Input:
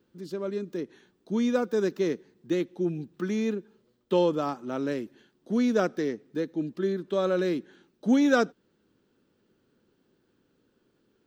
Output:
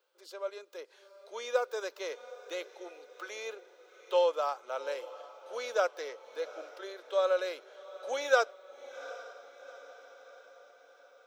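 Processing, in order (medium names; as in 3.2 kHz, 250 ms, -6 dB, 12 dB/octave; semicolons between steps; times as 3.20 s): elliptic high-pass 520 Hz, stop band 70 dB; band-stop 1.8 kHz, Q 6.8; echo that smears into a reverb 777 ms, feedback 54%, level -16 dB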